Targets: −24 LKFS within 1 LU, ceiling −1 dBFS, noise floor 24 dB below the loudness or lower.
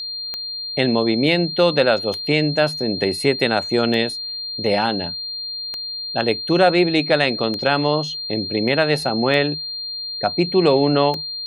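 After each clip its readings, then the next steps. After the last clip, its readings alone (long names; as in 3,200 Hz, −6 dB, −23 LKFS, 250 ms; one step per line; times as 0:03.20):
number of clicks 7; interfering tone 4,200 Hz; level of the tone −26 dBFS; integrated loudness −19.5 LKFS; sample peak −2.5 dBFS; target loudness −24.0 LKFS
→ click removal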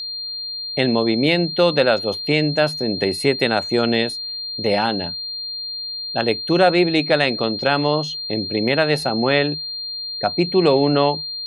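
number of clicks 0; interfering tone 4,200 Hz; level of the tone −26 dBFS
→ notch filter 4,200 Hz, Q 30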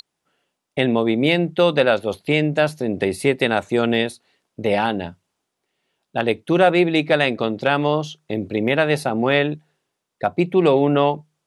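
interfering tone none found; integrated loudness −19.5 LKFS; sample peak −3.0 dBFS; target loudness −24.0 LKFS
→ level −4.5 dB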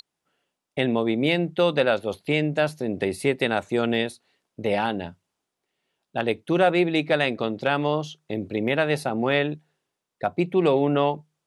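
integrated loudness −24.0 LKFS; sample peak −7.5 dBFS; background noise floor −83 dBFS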